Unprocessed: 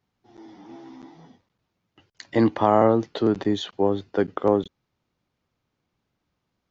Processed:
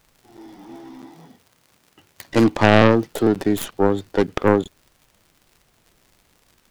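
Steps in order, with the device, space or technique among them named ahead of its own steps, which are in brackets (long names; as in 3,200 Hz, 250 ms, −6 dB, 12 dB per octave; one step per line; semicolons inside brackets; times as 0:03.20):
record under a worn stylus (stylus tracing distortion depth 0.38 ms; surface crackle 100 per second −44 dBFS; pink noise bed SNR 40 dB)
0:01.00–0:02.30: high-pass filter 77 Hz
level +3.5 dB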